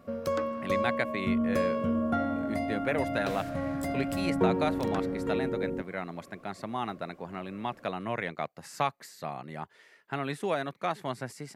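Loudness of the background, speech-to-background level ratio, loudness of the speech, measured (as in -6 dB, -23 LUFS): -31.0 LUFS, -4.0 dB, -35.0 LUFS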